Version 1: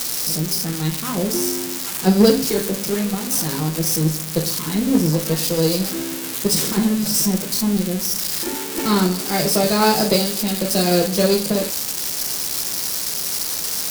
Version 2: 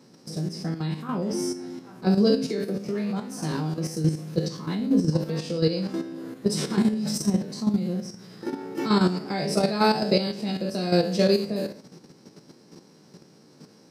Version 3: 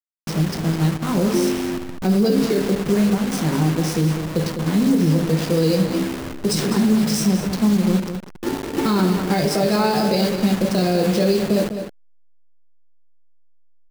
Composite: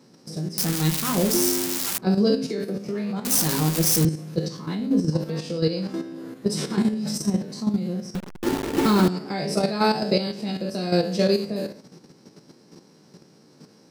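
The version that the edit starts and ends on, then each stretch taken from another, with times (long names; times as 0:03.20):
2
0:00.58–0:01.98: punch in from 1
0:03.25–0:04.05: punch in from 1
0:08.15–0:09.08: punch in from 3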